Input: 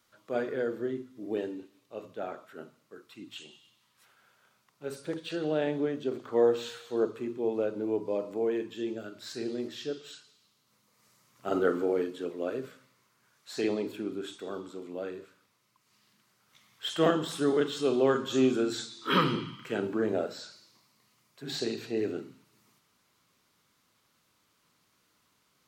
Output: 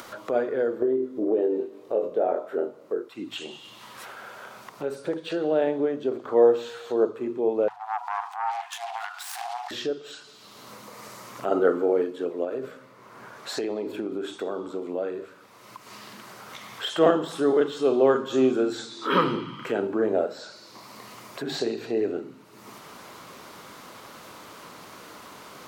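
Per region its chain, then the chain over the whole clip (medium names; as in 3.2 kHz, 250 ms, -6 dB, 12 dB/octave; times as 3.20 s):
0.82–3.09 s: peaking EQ 440 Hz +14 dB 1.6 oct + doubling 23 ms -5 dB + compression, threshold -25 dBFS
7.68–9.71 s: self-modulated delay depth 0.72 ms + transient shaper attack -9 dB, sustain +9 dB + brick-wall FIR high-pass 690 Hz
12.44–14.83 s: compression 3:1, threshold -33 dBFS + tape noise reduction on one side only decoder only
whole clip: peaking EQ 640 Hz +11.5 dB 2.8 oct; hum notches 50/100/150 Hz; upward compressor, threshold -20 dBFS; trim -4 dB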